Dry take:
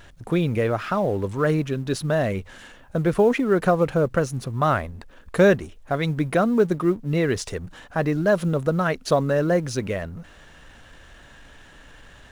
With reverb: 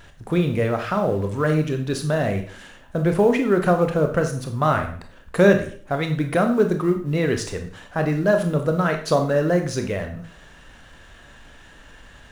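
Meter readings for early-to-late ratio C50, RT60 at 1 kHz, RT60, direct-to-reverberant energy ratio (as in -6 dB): 9.0 dB, 0.45 s, 0.50 s, 5.0 dB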